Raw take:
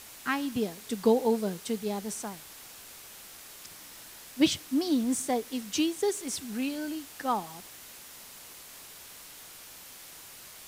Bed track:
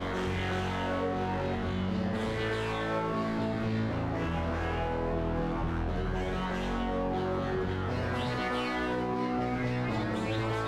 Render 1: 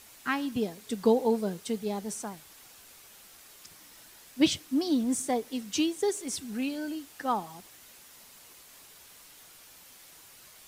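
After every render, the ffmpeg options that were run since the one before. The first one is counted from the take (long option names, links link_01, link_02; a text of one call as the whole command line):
ffmpeg -i in.wav -af "afftdn=noise_reduction=6:noise_floor=-48" out.wav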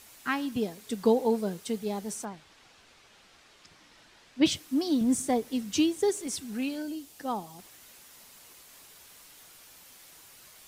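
ffmpeg -i in.wav -filter_complex "[0:a]asplit=3[link_01][link_02][link_03];[link_01]afade=type=out:start_time=2.24:duration=0.02[link_04];[link_02]lowpass=4400,afade=type=in:start_time=2.24:duration=0.02,afade=type=out:start_time=4.44:duration=0.02[link_05];[link_03]afade=type=in:start_time=4.44:duration=0.02[link_06];[link_04][link_05][link_06]amix=inputs=3:normalize=0,asettb=1/sr,asplit=3[link_07][link_08][link_09];[link_07]atrim=end=5.014[link_10];[link_08]atrim=start=5.01:end=6.27,asetpts=PTS-STARTPTS,afade=type=in:duration=0.004:curve=qsin,afade=type=out:start_time=1.256:duration=0.004:curve=qsin,equalizer=frequency=72:width=0.32:gain=8[link_11];[link_09]atrim=start=6.266[link_12];[link_10][link_11]acrossfade=duration=0.004:curve1=hsin:curve2=qsin[link_13];[link_13][link_12]acrossfade=duration=0.004:curve1=qsin:curve2=hsin,asettb=1/sr,asplit=3[link_14][link_15][link_16];[link_14]atrim=end=6.824[link_17];[link_15]atrim=start=6.82:end=7.59,asetpts=PTS-STARTPTS,afade=type=in:duration=0.004:curve=qsin,afade=type=out:start_time=0.766:duration=0.004:curve=qsin,equalizer=frequency=1500:width_type=o:width=1.6:gain=-8[link_18];[link_16]atrim=start=7.586[link_19];[link_17][link_18]acrossfade=duration=0.004:curve1=hsin:curve2=qsin[link_20];[link_20][link_19]acrossfade=duration=0.004:curve1=qsin:curve2=hsin" out.wav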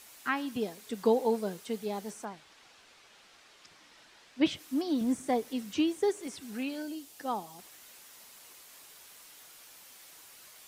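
ffmpeg -i in.wav -filter_complex "[0:a]acrossover=split=2900[link_01][link_02];[link_02]acompressor=threshold=-46dB:ratio=4:attack=1:release=60[link_03];[link_01][link_03]amix=inputs=2:normalize=0,lowshelf=frequency=210:gain=-10" out.wav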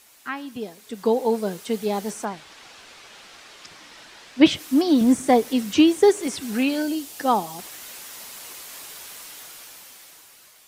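ffmpeg -i in.wav -af "dynaudnorm=framelen=310:gausssize=9:maxgain=14dB" out.wav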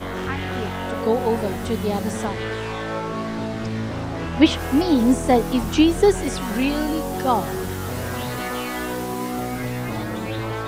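ffmpeg -i in.wav -i bed.wav -filter_complex "[1:a]volume=4dB[link_01];[0:a][link_01]amix=inputs=2:normalize=0" out.wav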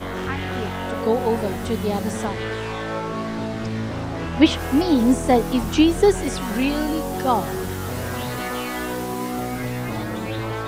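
ffmpeg -i in.wav -af anull out.wav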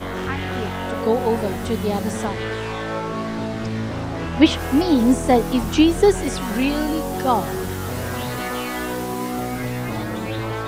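ffmpeg -i in.wav -af "volume=1dB" out.wav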